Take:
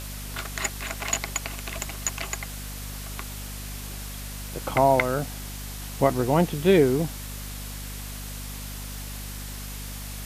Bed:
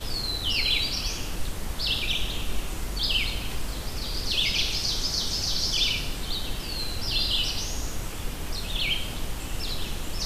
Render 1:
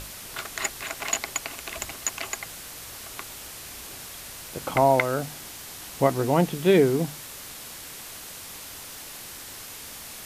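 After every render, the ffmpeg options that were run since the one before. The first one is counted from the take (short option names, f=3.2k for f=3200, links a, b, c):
-af "bandreject=f=50:t=h:w=6,bandreject=f=100:t=h:w=6,bandreject=f=150:t=h:w=6,bandreject=f=200:t=h:w=6,bandreject=f=250:t=h:w=6"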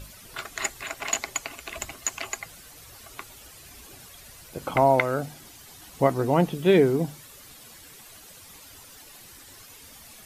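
-af "afftdn=nr=11:nf=-41"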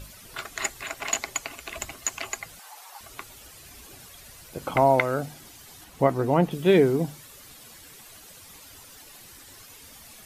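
-filter_complex "[0:a]asettb=1/sr,asplit=3[a][b][c];[a]atrim=end=2.594[d];[b]atrim=start=2.59:end=3.01,asetpts=PTS-STARTPTS,afade=t=in:d=0.004:c=qsin,afade=t=out:st=0.416:d=0.004:c=qsin,highpass=f=840:t=q:w=6.5[e];[c]atrim=start=3.006[f];[d][e]acrossfade=d=0.004:c1=hsin:c2=qsin[g];[g][f]acrossfade=d=0.004:c1=qsin:c2=hsin,asettb=1/sr,asplit=3[h][i][j];[h]atrim=end=5.844[k];[i]atrim=start=5.84:end=6.51,asetpts=PTS-STARTPTS,afade=t=in:d=0.004:c=qsin,afade=t=out:st=0.666:d=0.004:c=qsin,acrossover=split=2900[l][m];[m]acompressor=threshold=-49dB:ratio=4:attack=1:release=60[n];[l][n]amix=inputs=2:normalize=0[o];[j]atrim=start=6.506[p];[k][o]acrossfade=d=0.004:c1=hsin:c2=qsin[q];[q][p]acrossfade=d=0.004:c1=qsin:c2=hsin"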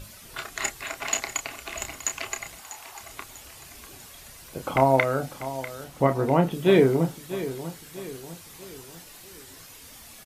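-filter_complex "[0:a]asplit=2[a][b];[b]adelay=30,volume=-8dB[c];[a][c]amix=inputs=2:normalize=0,aecho=1:1:645|1290|1935|2580:0.211|0.0951|0.0428|0.0193"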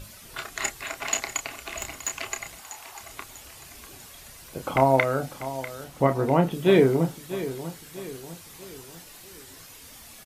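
-filter_complex "[0:a]asettb=1/sr,asplit=3[a][b][c];[a]atrim=end=1.634[d];[b]atrim=start=1.63:end=2.33,asetpts=PTS-STARTPTS,afade=t=in:d=0.004:c=qsin,afade=t=out:st=0.696:d=0.004:c=qsin,volume=20.5dB,asoftclip=hard,volume=-20.5dB[e];[c]atrim=start=2.326[f];[d][e]acrossfade=d=0.004:c1=hsin:c2=qsin[g];[g][f]acrossfade=d=0.004:c1=qsin:c2=hsin"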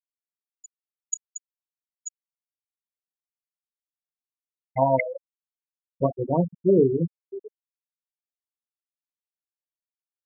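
-af "afftfilt=real='re*gte(hypot(re,im),0.398)':imag='im*gte(hypot(re,im),0.398)':win_size=1024:overlap=0.75"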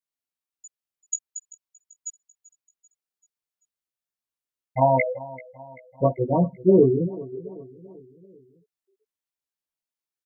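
-filter_complex "[0:a]asplit=2[a][b];[b]adelay=16,volume=-2.5dB[c];[a][c]amix=inputs=2:normalize=0,aecho=1:1:388|776|1164|1552:0.112|0.0583|0.0303|0.0158"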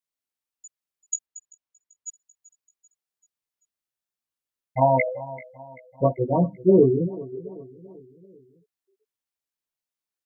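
-filter_complex "[0:a]asettb=1/sr,asplit=3[a][b][c];[a]atrim=end=1.264[d];[b]atrim=start=1.26:end=2.08,asetpts=PTS-STARTPTS,afade=t=in:d=0.004:c=qsin,afade=t=out:st=0.816:d=0.004:c=qsin,highshelf=f=5.5k:g=-9.5[e];[c]atrim=start=2.076[f];[d][e]acrossfade=d=0.004:c1=hsin:c2=qsin[g];[g][f]acrossfade=d=0.004:c1=qsin:c2=hsin,asettb=1/sr,asplit=3[h][i][j];[h]atrim=end=5.064[k];[i]atrim=start=5.06:end=5.56,asetpts=PTS-STARTPTS,afade=t=in:d=0.004:c=qsin,afade=t=out:st=0.496:d=0.004:c=qsin,asplit=2[l][m];[m]adelay=21,volume=-3dB[n];[l][n]amix=inputs=2:normalize=0,atrim=end_sample=22050[o];[j]atrim=start=5.556[p];[k][o]acrossfade=d=0.004:c1=hsin:c2=qsin[q];[q][p]acrossfade=d=0.004:c1=qsin:c2=hsin,asettb=1/sr,asplit=3[r][s][t];[r]atrim=end=6.284[u];[s]atrim=start=6.28:end=6.7,asetpts=PTS-STARTPTS,afade=t=in:d=0.004:c=qsin,afade=t=out:st=0.416:d=0.004:c=qsin,bandreject=f=50:t=h:w=6,bandreject=f=100:t=h:w=6,bandreject=f=150:t=h:w=6,bandreject=f=200:t=h:w=6,bandreject=f=250:t=h:w=6,bandreject=f=300:t=h:w=6[v];[t]atrim=start=6.696[w];[u][v]acrossfade=d=0.004:c1=hsin:c2=qsin[x];[x][w]acrossfade=d=0.004:c1=qsin:c2=hsin"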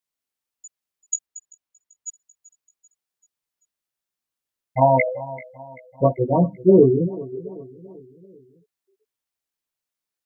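-af "volume=3dB"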